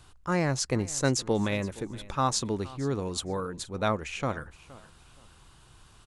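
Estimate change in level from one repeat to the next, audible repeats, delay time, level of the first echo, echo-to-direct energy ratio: -11.5 dB, 2, 469 ms, -20.0 dB, -19.5 dB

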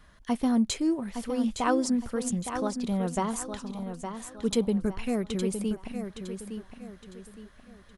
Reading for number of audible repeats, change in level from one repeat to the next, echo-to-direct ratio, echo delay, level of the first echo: 4, -9.0 dB, -7.5 dB, 863 ms, -8.0 dB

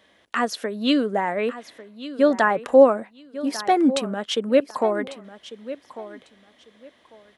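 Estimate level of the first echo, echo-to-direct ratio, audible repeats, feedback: -15.0 dB, -15.0 dB, 2, 21%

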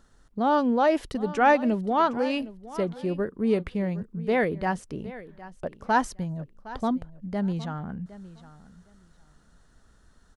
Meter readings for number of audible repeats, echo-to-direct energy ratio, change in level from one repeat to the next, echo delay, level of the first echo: 2, -17.0 dB, -15.0 dB, 762 ms, -17.0 dB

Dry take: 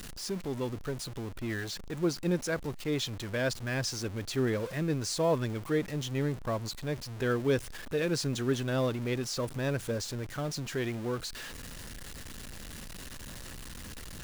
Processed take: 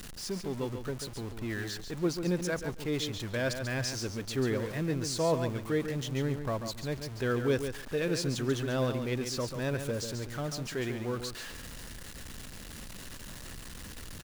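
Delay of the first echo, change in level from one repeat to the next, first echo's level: 140 ms, -16.5 dB, -8.0 dB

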